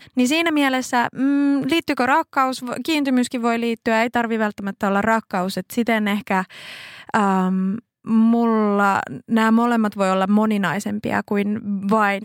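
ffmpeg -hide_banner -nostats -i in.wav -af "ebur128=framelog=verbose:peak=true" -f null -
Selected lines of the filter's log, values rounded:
Integrated loudness:
  I:         -19.8 LUFS
  Threshold: -29.9 LUFS
Loudness range:
  LRA:         3.0 LU
  Threshold: -40.0 LUFS
  LRA low:   -21.6 LUFS
  LRA high:  -18.6 LUFS
True peak:
  Peak:       -3.4 dBFS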